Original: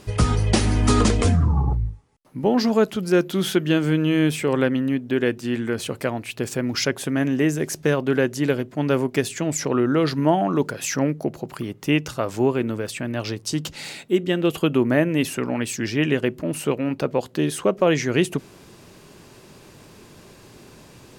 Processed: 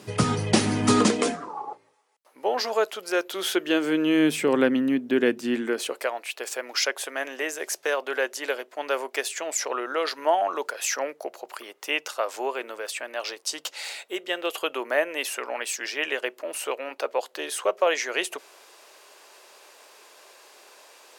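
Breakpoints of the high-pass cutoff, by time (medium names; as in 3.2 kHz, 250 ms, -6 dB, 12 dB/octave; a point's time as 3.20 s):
high-pass 24 dB/octave
0.92 s 130 Hz
1.56 s 490 Hz
3.27 s 490 Hz
4.41 s 200 Hz
5.50 s 200 Hz
6.10 s 530 Hz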